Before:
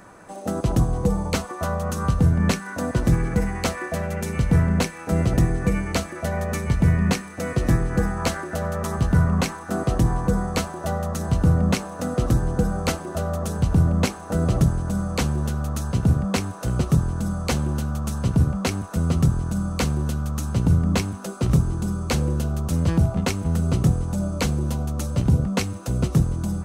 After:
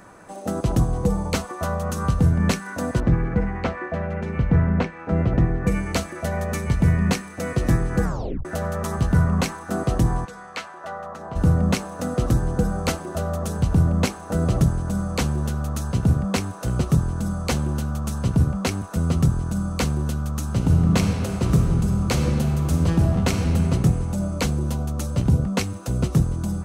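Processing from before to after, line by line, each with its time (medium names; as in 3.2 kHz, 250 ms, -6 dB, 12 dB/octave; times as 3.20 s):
3.00–5.67 s: low-pass 2.2 kHz
8.04 s: tape stop 0.41 s
10.24–11.35 s: band-pass filter 3.2 kHz -> 780 Hz, Q 0.99
20.45–23.47 s: reverb throw, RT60 2.8 s, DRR 3 dB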